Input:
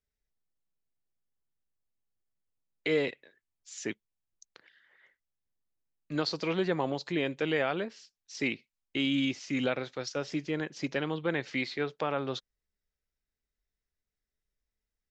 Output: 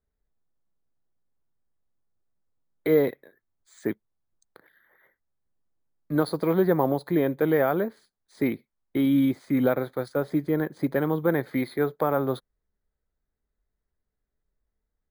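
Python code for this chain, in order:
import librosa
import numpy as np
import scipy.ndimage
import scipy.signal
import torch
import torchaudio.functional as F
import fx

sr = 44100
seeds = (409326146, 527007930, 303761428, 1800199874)

y = scipy.signal.lfilter(np.full(16, 1.0 / 16), 1.0, x)
y = np.repeat(y[::3], 3)[:len(y)]
y = y * librosa.db_to_amplitude(8.5)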